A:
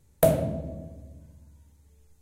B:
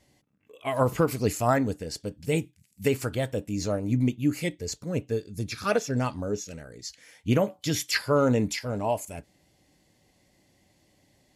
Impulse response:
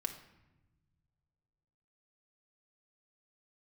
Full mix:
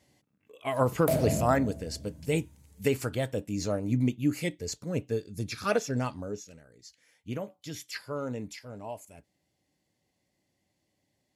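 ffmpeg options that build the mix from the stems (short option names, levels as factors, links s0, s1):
-filter_complex "[0:a]alimiter=limit=0.133:level=0:latency=1:release=265,adelay=850,volume=1.26[s0];[1:a]volume=0.794,afade=t=out:st=5.86:d=0.76:silence=0.298538[s1];[s0][s1]amix=inputs=2:normalize=0,highpass=63"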